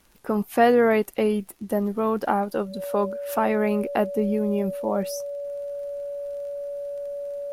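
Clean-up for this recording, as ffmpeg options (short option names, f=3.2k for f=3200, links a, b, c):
-af "adeclick=t=4,bandreject=f=570:w=30"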